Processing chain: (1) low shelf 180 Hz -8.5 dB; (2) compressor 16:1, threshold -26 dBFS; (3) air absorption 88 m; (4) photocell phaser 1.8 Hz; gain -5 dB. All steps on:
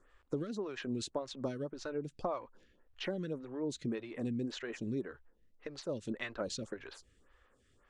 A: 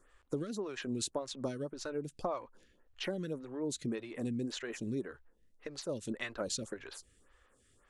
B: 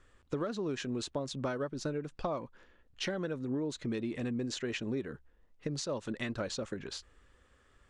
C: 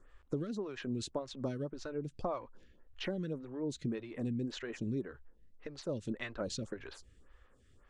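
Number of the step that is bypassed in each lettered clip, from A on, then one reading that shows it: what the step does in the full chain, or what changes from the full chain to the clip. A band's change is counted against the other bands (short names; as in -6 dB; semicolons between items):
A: 3, 8 kHz band +7.0 dB; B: 4, crest factor change -3.0 dB; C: 1, 125 Hz band +4.0 dB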